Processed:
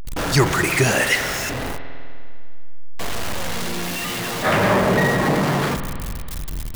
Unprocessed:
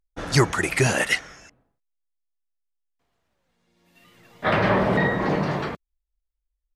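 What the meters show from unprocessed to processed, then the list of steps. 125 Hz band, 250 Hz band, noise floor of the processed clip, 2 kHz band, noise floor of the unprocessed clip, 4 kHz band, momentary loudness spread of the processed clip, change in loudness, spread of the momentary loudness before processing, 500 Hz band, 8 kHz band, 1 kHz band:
+4.0 dB, +4.0 dB, -27 dBFS, +4.5 dB, -82 dBFS, +7.0 dB, 14 LU, +2.0 dB, 8 LU, +4.0 dB, +6.5 dB, +4.5 dB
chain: zero-crossing step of -20.5 dBFS; spring tank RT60 2.3 s, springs 50 ms, chirp 35 ms, DRR 8.5 dB

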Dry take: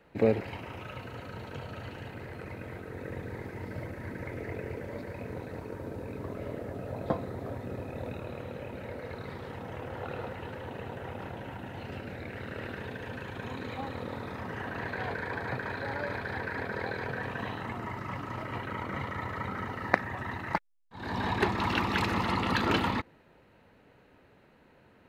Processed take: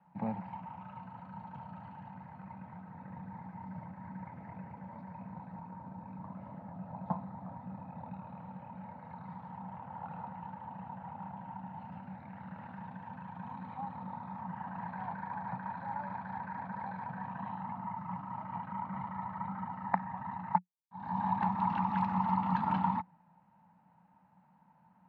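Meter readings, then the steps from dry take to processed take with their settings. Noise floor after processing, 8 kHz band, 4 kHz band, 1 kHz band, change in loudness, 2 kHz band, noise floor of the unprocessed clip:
-66 dBFS, under -20 dB, under -20 dB, +1.0 dB, -4.5 dB, -14.5 dB, -61 dBFS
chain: double band-pass 400 Hz, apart 2.3 oct; gain +5.5 dB

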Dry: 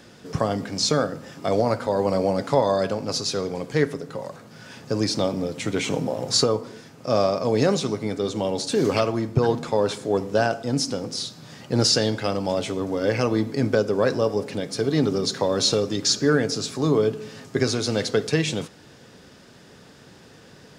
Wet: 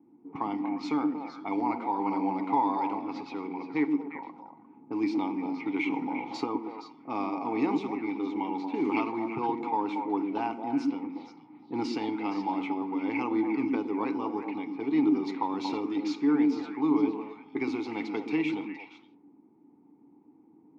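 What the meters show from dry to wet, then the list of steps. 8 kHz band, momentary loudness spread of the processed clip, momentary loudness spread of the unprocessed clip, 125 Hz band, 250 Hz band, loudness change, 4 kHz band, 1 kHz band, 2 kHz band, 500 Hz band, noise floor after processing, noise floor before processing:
under -25 dB, 10 LU, 9 LU, -20.5 dB, -1.5 dB, -7.0 dB, -21.0 dB, -1.0 dB, -7.5 dB, -14.0 dB, -59 dBFS, -49 dBFS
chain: low-pass opened by the level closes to 340 Hz, open at -19 dBFS; vowel filter u; bell 1400 Hz +15 dB 2.8 oct; on a send: delay with a stepping band-pass 0.117 s, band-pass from 250 Hz, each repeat 1.4 oct, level -1 dB; on the sum: gain -2 dB

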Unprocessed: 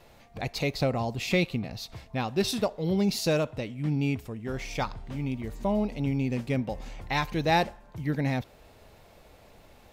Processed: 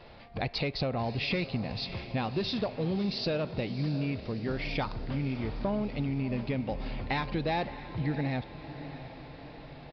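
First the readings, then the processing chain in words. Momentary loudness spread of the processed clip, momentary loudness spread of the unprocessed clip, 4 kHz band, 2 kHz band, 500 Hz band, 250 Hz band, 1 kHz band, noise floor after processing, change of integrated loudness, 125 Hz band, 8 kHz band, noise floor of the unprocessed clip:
12 LU, 10 LU, -1.5 dB, -3.5 dB, -4.0 dB, -3.0 dB, -4.5 dB, -48 dBFS, -3.0 dB, -2.0 dB, under -20 dB, -55 dBFS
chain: added harmonics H 5 -18 dB, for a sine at -12 dBFS; compressor, threshold -28 dBFS, peak gain reduction 9 dB; on a send: diffused feedback echo 0.654 s, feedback 57%, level -12.5 dB; on the sum: downsampling 11025 Hz

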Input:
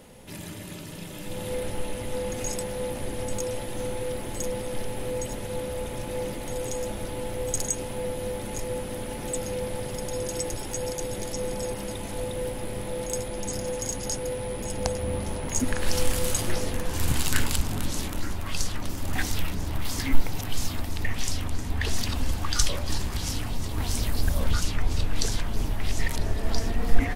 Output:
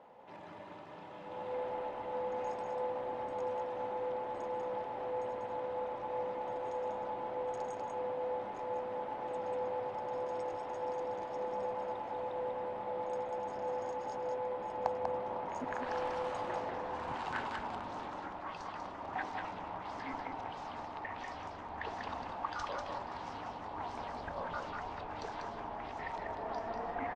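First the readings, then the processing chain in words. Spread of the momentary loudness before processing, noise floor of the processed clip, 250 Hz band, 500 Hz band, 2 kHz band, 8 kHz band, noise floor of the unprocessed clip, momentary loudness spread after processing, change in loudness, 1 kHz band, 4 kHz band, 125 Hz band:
6 LU, -47 dBFS, -14.5 dB, -5.5 dB, -9.5 dB, under -30 dB, -35 dBFS, 6 LU, -9.0 dB, +2.0 dB, -19.5 dB, -23.0 dB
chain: band-pass 870 Hz, Q 2.5; air absorption 110 m; echo 0.193 s -4.5 dB; gain +2.5 dB

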